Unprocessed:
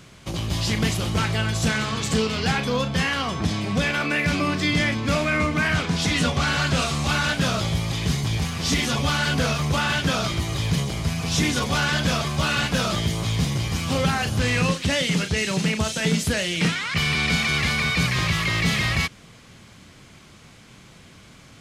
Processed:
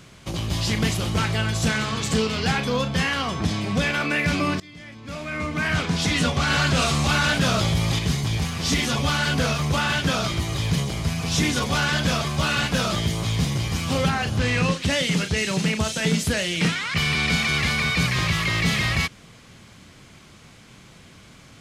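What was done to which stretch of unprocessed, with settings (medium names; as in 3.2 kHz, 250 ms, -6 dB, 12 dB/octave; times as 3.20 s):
4.60–5.80 s: fade in quadratic, from -23.5 dB
6.50–7.99 s: level flattener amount 50%
14.08–14.82 s: treble shelf 6.6 kHz -> 11 kHz -10 dB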